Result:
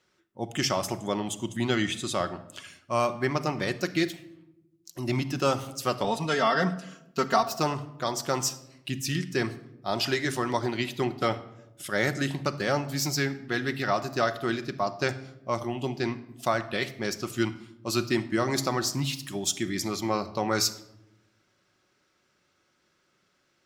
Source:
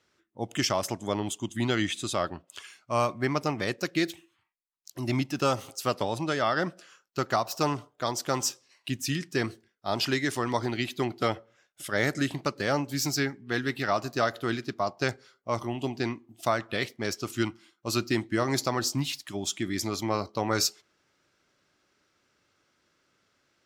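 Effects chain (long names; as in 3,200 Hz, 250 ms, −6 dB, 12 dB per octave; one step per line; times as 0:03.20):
0:06.04–0:07.43: comb filter 4.4 ms, depth 95%
0:19.16–0:19.65: high-shelf EQ 7,000 Hz +9 dB
rectangular room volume 2,800 cubic metres, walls furnished, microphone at 1 metre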